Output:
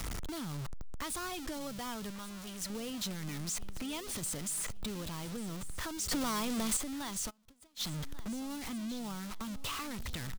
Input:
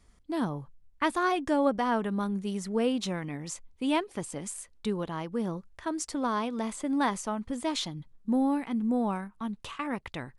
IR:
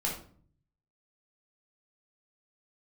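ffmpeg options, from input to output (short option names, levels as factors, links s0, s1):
-filter_complex "[0:a]aeval=exprs='val(0)+0.5*0.0376*sgn(val(0))':c=same,acrossover=split=130|3100[s0][s1][s2];[s1]acompressor=threshold=0.0126:ratio=6[s3];[s0][s3][s2]amix=inputs=3:normalize=0,equalizer=f=1300:w=6.6:g=4.5,asplit=2[s4][s5];[s5]aecho=0:1:1140|2280|3420:0.141|0.0509|0.0183[s6];[s4][s6]amix=inputs=2:normalize=0,asoftclip=type=hard:threshold=0.0335,asettb=1/sr,asplit=3[s7][s8][s9];[s7]atrim=end=2.104[s10];[s8]atrim=start=2.1:end=2.7,asetpts=PTS-STARTPTS,afade=t=in:d=0.004:c=qsin,afade=t=out:st=0.596:d=0.004:c=qsin,equalizer=f=240:w=0.79:g=-8[s11];[s9]atrim=start=2.696[s12];[s10][s11]acrossfade=d=0.004:c1=hsin:c2=qsin[s13];[s13][s12]acrossfade=d=0.004:c1=qsin:c2=hsin,asettb=1/sr,asplit=3[s14][s15][s16];[s14]atrim=end=6.114[s17];[s15]atrim=start=6.11:end=6.77,asetpts=PTS-STARTPTS,afade=t=in:d=0.004:c=qsin,afade=t=out:st=0.656:d=0.004:c=qsin,acontrast=71[s18];[s16]atrim=start=6.766[s19];[s17][s18]acrossfade=d=0.004:c1=hsin:c2=qsin[s20];[s20][s19]acrossfade=d=0.004:c1=qsin:c2=hsin,asplit=3[s21][s22][s23];[s21]afade=t=out:st=7.29:d=0.02[s24];[s22]agate=range=0.0316:threshold=0.0282:ratio=16:detection=peak,afade=t=in:st=7.29:d=0.02,afade=t=out:st=7.79:d=0.02[s25];[s23]afade=t=in:st=7.79:d=0.02[s26];[s24][s25][s26]amix=inputs=3:normalize=0,volume=0.708"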